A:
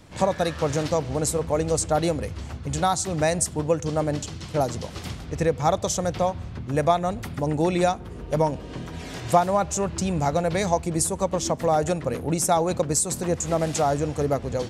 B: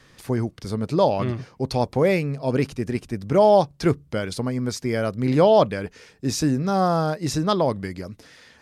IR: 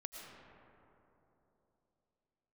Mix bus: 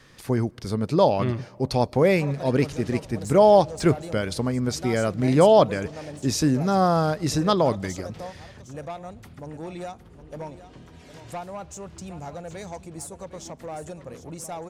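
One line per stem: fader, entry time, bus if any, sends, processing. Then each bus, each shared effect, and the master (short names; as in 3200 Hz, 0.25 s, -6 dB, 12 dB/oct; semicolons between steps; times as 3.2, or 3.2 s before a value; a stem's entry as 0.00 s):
-12.0 dB, 2.00 s, no send, echo send -13 dB, soft clip -16.5 dBFS, distortion -15 dB
0.0 dB, 0.00 s, send -23 dB, no echo send, dry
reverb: on, RT60 3.3 s, pre-delay 70 ms
echo: echo 0.76 s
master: dry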